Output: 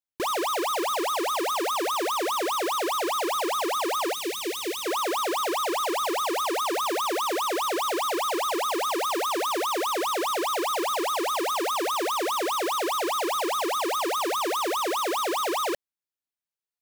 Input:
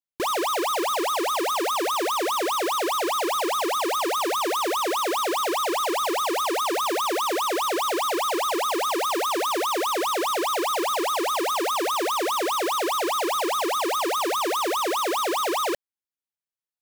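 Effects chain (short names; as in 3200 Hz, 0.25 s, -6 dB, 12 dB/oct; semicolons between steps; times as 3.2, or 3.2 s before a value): 4.13–4.86 band shelf 940 Hz -13 dB; gain -2 dB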